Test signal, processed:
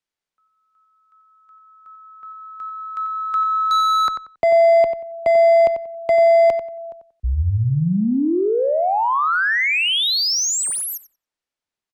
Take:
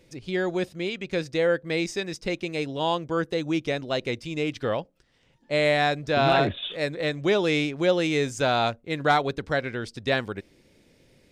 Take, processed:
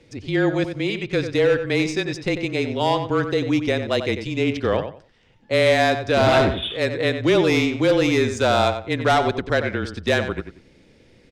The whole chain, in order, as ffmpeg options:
ffmpeg -i in.wav -filter_complex "[0:a]acontrast=41,asoftclip=type=hard:threshold=-12.5dB,adynamicsmooth=sensitivity=1.5:basefreq=7300,asplit=2[link_01][link_02];[link_02]adelay=92,lowpass=frequency=3300:poles=1,volume=-8.5dB,asplit=2[link_03][link_04];[link_04]adelay=92,lowpass=frequency=3300:poles=1,volume=0.23,asplit=2[link_05][link_06];[link_06]adelay=92,lowpass=frequency=3300:poles=1,volume=0.23[link_07];[link_01][link_03][link_05][link_07]amix=inputs=4:normalize=0,afreqshift=-25" out.wav

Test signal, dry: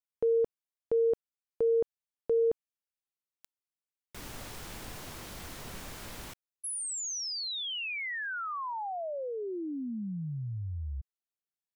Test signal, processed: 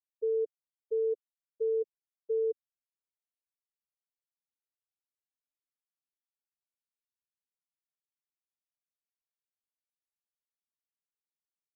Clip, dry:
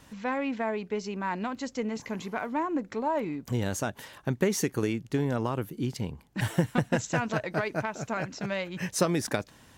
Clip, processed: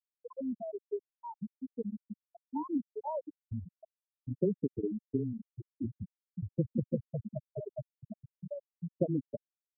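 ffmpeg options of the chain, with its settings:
ffmpeg -i in.wav -filter_complex "[0:a]afreqshift=-13,afftfilt=real='re*gte(hypot(re,im),0.282)':imag='im*gte(hypot(re,im),0.282)':win_size=1024:overlap=0.75,tiltshelf=frequency=970:gain=7,acrossover=split=170|6000[link_01][link_02][link_03];[link_01]acompressor=threshold=-35dB:ratio=6:attack=25:release=360:knee=1:detection=peak[link_04];[link_04][link_02][link_03]amix=inputs=3:normalize=0,volume=-7.5dB" out.wav

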